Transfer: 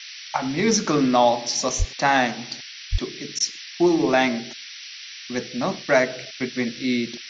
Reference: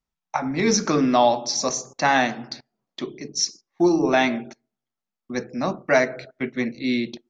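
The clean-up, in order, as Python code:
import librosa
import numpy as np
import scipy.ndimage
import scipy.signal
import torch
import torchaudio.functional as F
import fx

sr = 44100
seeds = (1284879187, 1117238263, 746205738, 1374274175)

y = fx.fix_deplosive(x, sr, at_s=(1.78, 2.91))
y = fx.fix_interpolate(y, sr, at_s=(3.39,), length_ms=11.0)
y = fx.noise_reduce(y, sr, print_start_s=4.61, print_end_s=5.11, reduce_db=30.0)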